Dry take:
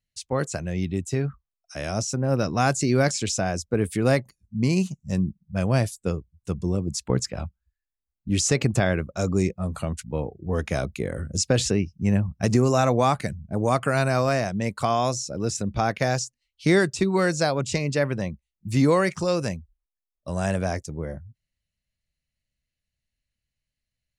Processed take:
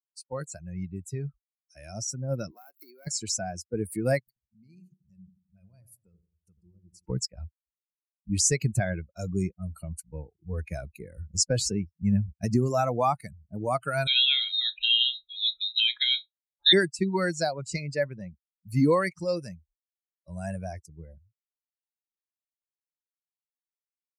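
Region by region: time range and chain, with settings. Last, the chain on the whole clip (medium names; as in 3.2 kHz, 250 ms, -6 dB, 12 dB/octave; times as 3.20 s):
2.51–3.07 s: dead-time distortion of 0.1 ms + high-pass 290 Hz 24 dB/octave + compression 10:1, threshold -32 dBFS
4.19–7.06 s: compression 2.5:1, threshold -43 dBFS + filtered feedback delay 86 ms, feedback 56%, low-pass 1.4 kHz, level -6 dB
14.07–16.73 s: flutter echo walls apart 5.7 m, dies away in 0.24 s + frequency inversion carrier 3.9 kHz
whole clip: expander on every frequency bin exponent 2; treble shelf 5.7 kHz +7 dB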